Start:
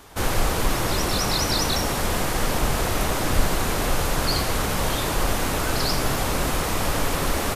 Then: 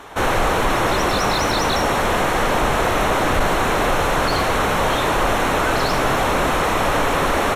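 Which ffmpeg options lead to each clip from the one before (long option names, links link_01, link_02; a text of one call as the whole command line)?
ffmpeg -i in.wav -filter_complex "[0:a]acontrast=87,asplit=2[link_01][link_02];[link_02]highpass=frequency=720:poles=1,volume=14dB,asoftclip=type=tanh:threshold=-2.5dB[link_03];[link_01][link_03]amix=inputs=2:normalize=0,lowpass=frequency=1400:poles=1,volume=-6dB,bandreject=frequency=4800:width=5.4,volume=-2dB" out.wav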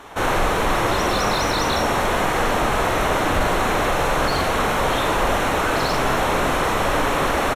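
ffmpeg -i in.wav -filter_complex "[0:a]asplit=2[link_01][link_02];[link_02]adelay=46,volume=-6dB[link_03];[link_01][link_03]amix=inputs=2:normalize=0,volume=-2.5dB" out.wav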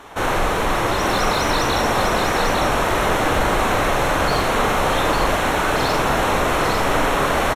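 ffmpeg -i in.wav -af "aecho=1:1:852:0.631" out.wav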